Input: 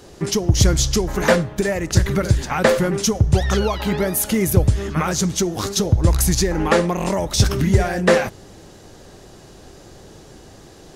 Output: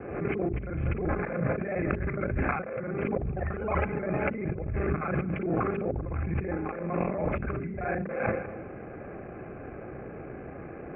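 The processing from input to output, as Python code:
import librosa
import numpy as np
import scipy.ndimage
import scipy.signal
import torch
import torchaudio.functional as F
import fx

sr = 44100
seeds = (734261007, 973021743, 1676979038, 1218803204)

y = fx.local_reverse(x, sr, ms=35.0)
y = scipy.signal.sosfilt(scipy.signal.butter(16, 2500.0, 'lowpass', fs=sr, output='sos'), y)
y = fx.notch_comb(y, sr, f0_hz=940.0)
y = fx.echo_feedback(y, sr, ms=197, feedback_pct=22, wet_db=-20.5)
y = fx.over_compress(y, sr, threshold_db=-29.0, ratio=-1.0)
y = fx.hum_notches(y, sr, base_hz=50, count=8)
y = fx.pre_swell(y, sr, db_per_s=53.0)
y = y * 10.0 ** (-2.5 / 20.0)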